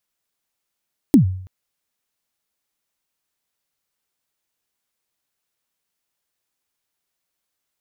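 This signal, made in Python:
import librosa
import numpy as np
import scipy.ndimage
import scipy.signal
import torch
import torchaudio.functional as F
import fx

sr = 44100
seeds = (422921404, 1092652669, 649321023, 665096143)

y = fx.drum_kick(sr, seeds[0], length_s=0.33, level_db=-4.5, start_hz=320.0, end_hz=93.0, sweep_ms=110.0, decay_s=0.6, click=True)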